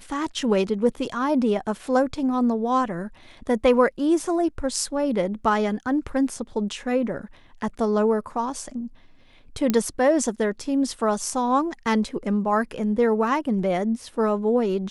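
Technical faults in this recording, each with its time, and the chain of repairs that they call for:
0:09.70: click −8 dBFS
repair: click removal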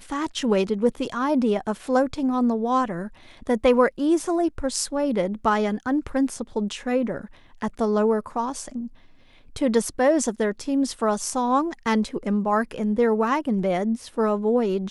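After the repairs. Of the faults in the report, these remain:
none of them is left

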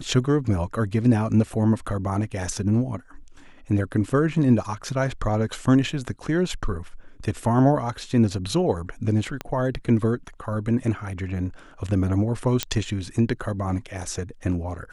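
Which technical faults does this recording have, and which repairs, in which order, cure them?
0:09.41: click −15 dBFS
0:12.63: click −6 dBFS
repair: click removal

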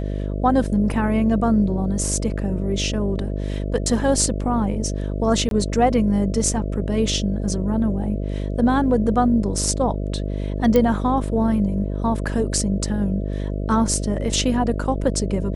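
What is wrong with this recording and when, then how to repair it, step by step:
mains buzz 50 Hz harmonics 13 −25 dBFS
0:05.49–0:05.51: drop-out 22 ms
0:10.76: click −7 dBFS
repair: click removal
hum removal 50 Hz, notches 13
repair the gap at 0:05.49, 22 ms

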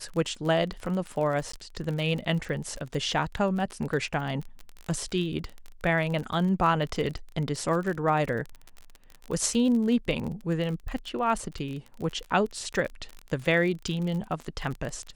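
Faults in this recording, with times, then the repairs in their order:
surface crackle 37 per second −32 dBFS
0:01.52–0:01.53: drop-out 14 ms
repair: click removal
repair the gap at 0:01.52, 14 ms

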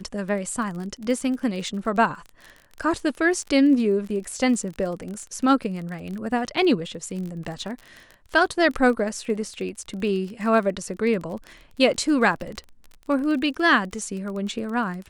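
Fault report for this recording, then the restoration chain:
surface crackle 26 per second −31 dBFS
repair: click removal

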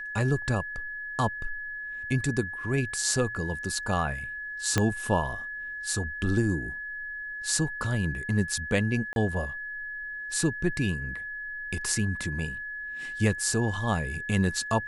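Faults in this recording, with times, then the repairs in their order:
whistle 1,700 Hz −34 dBFS
0:04.78: click −9 dBFS
0:09.13–0:09.16: drop-out 31 ms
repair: click removal
notch filter 1,700 Hz, Q 30
repair the gap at 0:09.13, 31 ms

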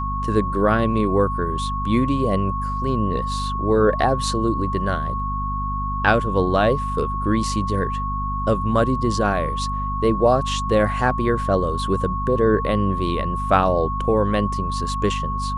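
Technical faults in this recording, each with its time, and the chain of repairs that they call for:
mains hum 50 Hz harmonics 5 −27 dBFS
whistle 1,100 Hz −25 dBFS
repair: hum removal 50 Hz, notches 5
notch filter 1,100 Hz, Q 30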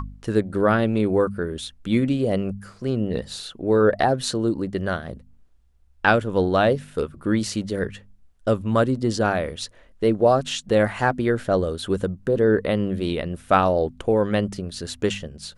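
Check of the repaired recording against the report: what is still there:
none of them is left

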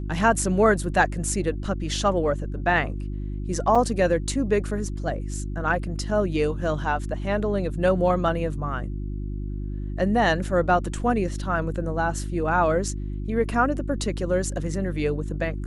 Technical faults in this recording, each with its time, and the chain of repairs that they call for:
mains hum 50 Hz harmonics 7 −30 dBFS
0:03.75: drop-out 4.8 ms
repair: hum removal 50 Hz, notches 7
repair the gap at 0:03.75, 4.8 ms

